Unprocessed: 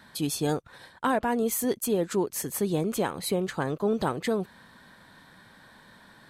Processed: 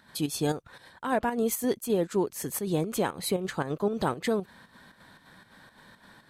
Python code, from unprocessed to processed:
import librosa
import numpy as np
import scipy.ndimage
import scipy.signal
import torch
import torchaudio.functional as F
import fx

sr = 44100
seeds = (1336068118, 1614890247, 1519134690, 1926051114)

y = fx.volume_shaper(x, sr, bpm=116, per_beat=2, depth_db=-8, release_ms=83.0, shape='slow start')